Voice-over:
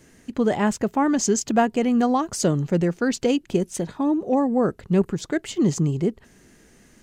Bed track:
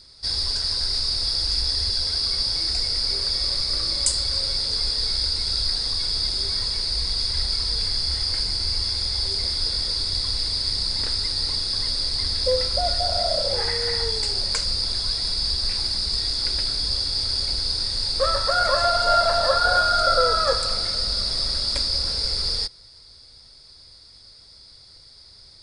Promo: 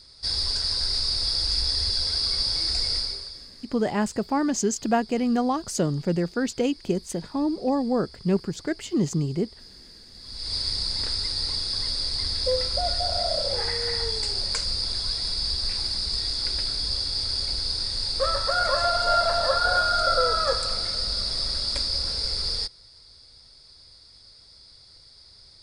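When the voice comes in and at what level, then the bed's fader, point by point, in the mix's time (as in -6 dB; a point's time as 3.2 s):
3.35 s, -3.5 dB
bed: 2.96 s -1.5 dB
3.51 s -23.5 dB
10.13 s -23.5 dB
10.54 s -3 dB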